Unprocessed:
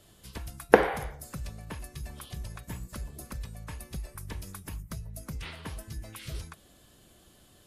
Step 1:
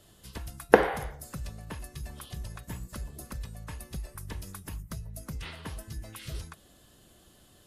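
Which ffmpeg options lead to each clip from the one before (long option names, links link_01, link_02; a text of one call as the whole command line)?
ffmpeg -i in.wav -af "bandreject=frequency=2300:width=19" out.wav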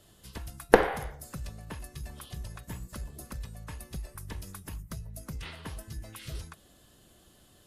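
ffmpeg -i in.wav -af "aeval=exprs='0.891*(cos(1*acos(clip(val(0)/0.891,-1,1)))-cos(1*PI/2))+0.0794*(cos(8*acos(clip(val(0)/0.891,-1,1)))-cos(8*PI/2))':channel_layout=same,volume=-1dB" out.wav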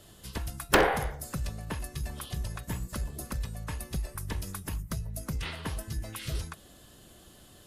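ffmpeg -i in.wav -af "aeval=exprs='0.15*(abs(mod(val(0)/0.15+3,4)-2)-1)':channel_layout=same,volume=5.5dB" out.wav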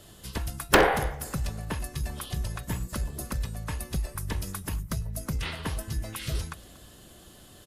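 ffmpeg -i in.wav -af "aecho=1:1:236|472|708:0.0794|0.0357|0.0161,volume=3dB" out.wav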